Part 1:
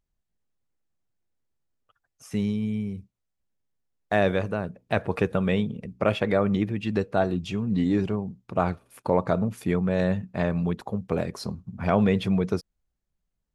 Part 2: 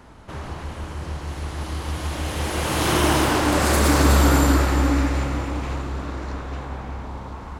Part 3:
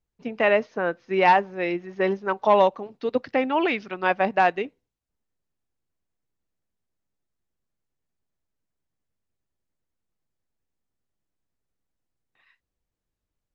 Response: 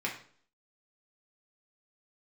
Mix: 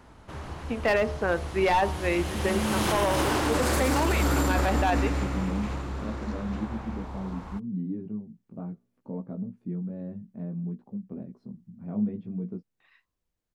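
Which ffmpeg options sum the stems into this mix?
-filter_complex "[0:a]bandpass=f=220:t=q:w=2.7:csg=0,flanger=delay=15.5:depth=3:speed=0.54,volume=0.841,asplit=2[s0][s1];[1:a]volume=0.531[s2];[2:a]aeval=exprs='clip(val(0),-1,0.168)':c=same,bandreject=f=61.9:t=h:w=4,bandreject=f=123.8:t=h:w=4,bandreject=f=185.7:t=h:w=4,bandreject=f=247.6:t=h:w=4,bandreject=f=309.5:t=h:w=4,bandreject=f=371.4:t=h:w=4,bandreject=f=433.3:t=h:w=4,bandreject=f=495.2:t=h:w=4,bandreject=f=557.1:t=h:w=4,bandreject=f=619:t=h:w=4,bandreject=f=680.9:t=h:w=4,bandreject=f=742.8:t=h:w=4,bandreject=f=804.7:t=h:w=4,bandreject=f=866.6:t=h:w=4,bandreject=f=928.5:t=h:w=4,bandreject=f=990.4:t=h:w=4,bandreject=f=1052.3:t=h:w=4,bandreject=f=1114.2:t=h:w=4,bandreject=f=1176.1:t=h:w=4,bandreject=f=1238:t=h:w=4,bandreject=f=1299.9:t=h:w=4,adelay=450,volume=1.06[s3];[s1]apad=whole_len=617244[s4];[s3][s4]sidechaincompress=threshold=0.0178:ratio=8:attack=16:release=546[s5];[s0][s2][s5]amix=inputs=3:normalize=0,alimiter=limit=0.168:level=0:latency=1:release=18"

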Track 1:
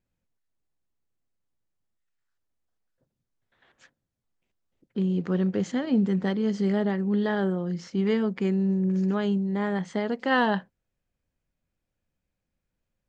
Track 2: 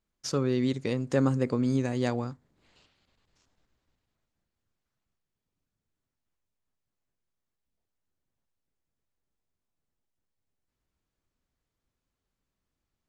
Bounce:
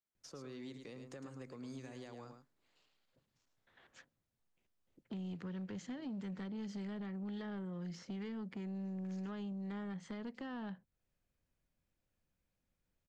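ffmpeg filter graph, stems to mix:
-filter_complex "[0:a]alimiter=limit=0.106:level=0:latency=1:release=379,adelay=150,volume=0.708[s0];[1:a]highpass=f=370:p=1,alimiter=limit=0.0708:level=0:latency=1:release=133,volume=0.251,asplit=2[s1][s2];[s2]volume=0.376,aecho=0:1:107:1[s3];[s0][s1][s3]amix=inputs=3:normalize=0,acrossover=split=220|1200[s4][s5][s6];[s4]acompressor=threshold=0.00708:ratio=4[s7];[s5]acompressor=threshold=0.00355:ratio=4[s8];[s6]acompressor=threshold=0.00178:ratio=4[s9];[s7][s8][s9]amix=inputs=3:normalize=0,asoftclip=type=tanh:threshold=0.0133"

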